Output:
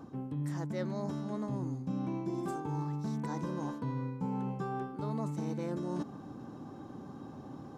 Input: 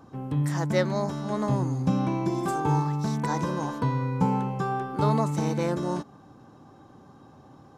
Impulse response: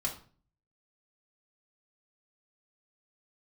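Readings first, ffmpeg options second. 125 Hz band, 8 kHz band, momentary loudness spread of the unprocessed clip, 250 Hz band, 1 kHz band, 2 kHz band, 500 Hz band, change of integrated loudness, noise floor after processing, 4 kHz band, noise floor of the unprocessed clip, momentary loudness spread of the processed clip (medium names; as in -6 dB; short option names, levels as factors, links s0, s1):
-10.5 dB, -13.5 dB, 4 LU, -8.0 dB, -12.5 dB, -13.5 dB, -10.5 dB, -10.5 dB, -48 dBFS, -14.0 dB, -52 dBFS, 11 LU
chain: -af "equalizer=f=250:w=0.79:g=7.5,areverse,acompressor=threshold=0.0178:ratio=5,areverse"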